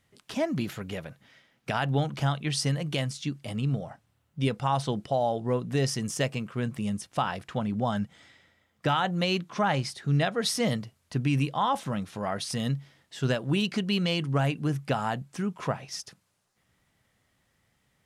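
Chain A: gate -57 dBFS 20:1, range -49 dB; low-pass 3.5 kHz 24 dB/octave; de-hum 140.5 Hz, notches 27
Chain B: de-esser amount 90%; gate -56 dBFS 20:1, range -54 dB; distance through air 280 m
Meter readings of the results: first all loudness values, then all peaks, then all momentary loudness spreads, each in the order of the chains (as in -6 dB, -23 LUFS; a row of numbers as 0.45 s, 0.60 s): -30.0 LUFS, -30.5 LUFS; -13.5 dBFS, -16.0 dBFS; 8 LU, 7 LU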